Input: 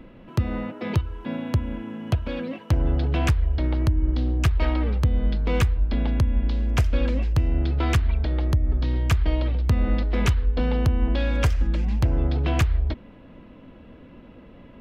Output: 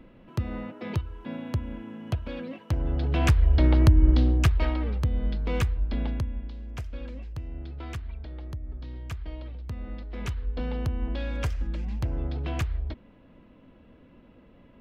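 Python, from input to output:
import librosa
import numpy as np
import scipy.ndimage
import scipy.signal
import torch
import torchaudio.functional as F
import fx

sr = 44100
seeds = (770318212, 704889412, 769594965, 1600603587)

y = fx.gain(x, sr, db=fx.line((2.87, -6.0), (3.56, 4.0), (4.14, 4.0), (4.78, -5.0), (6.05, -5.0), (6.53, -15.0), (10.03, -15.0), (10.52, -8.0)))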